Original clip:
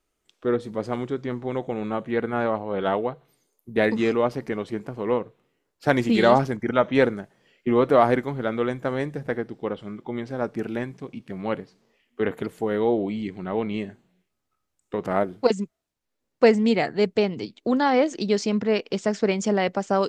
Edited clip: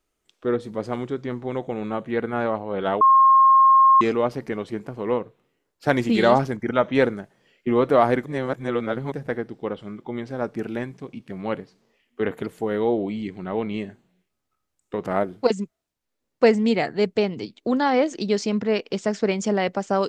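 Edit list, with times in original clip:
3.01–4.01 s: bleep 1.07 kHz -10.5 dBFS
8.26–9.12 s: reverse

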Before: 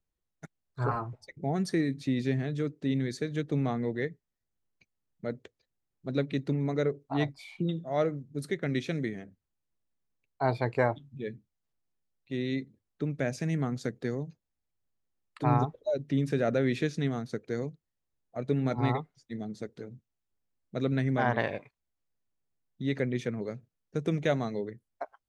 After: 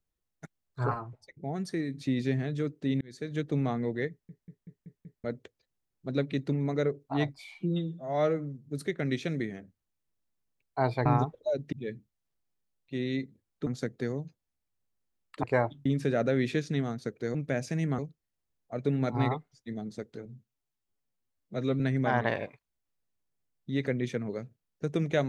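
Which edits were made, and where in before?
0.94–1.94 s: gain -4.5 dB
3.01–3.38 s: fade in
4.10 s: stutter in place 0.19 s, 6 plays
7.54–8.27 s: stretch 1.5×
10.69–11.11 s: swap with 15.46–16.13 s
13.05–13.69 s: move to 17.62 s
19.89–20.92 s: stretch 1.5×

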